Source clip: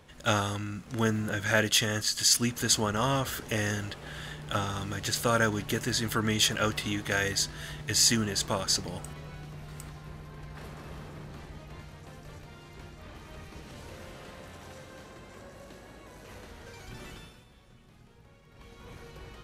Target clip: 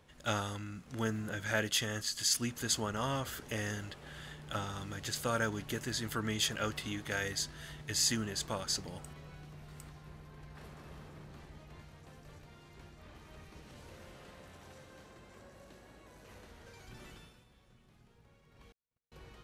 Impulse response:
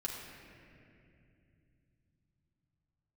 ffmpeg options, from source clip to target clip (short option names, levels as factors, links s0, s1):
-filter_complex "[0:a]asettb=1/sr,asplit=3[s0][s1][s2];[s0]atrim=end=18.724[s3];[s1]atrim=start=18.72:end=19.12,asetpts=PTS-STARTPTS,afade=t=in:d=0.004:c=qsin,afade=t=out:st=0.396:d=0.004:c=qsin,agate=range=0.00316:threshold=0.01:ratio=16:detection=peak[s4];[s2]atrim=start=19.116[s5];[s3][s4]acrossfade=d=0.004:c1=hsin:c2=qsin[s6];[s6][s5]acrossfade=d=0.004:c1=qsin:c2=hsin,volume=0.422"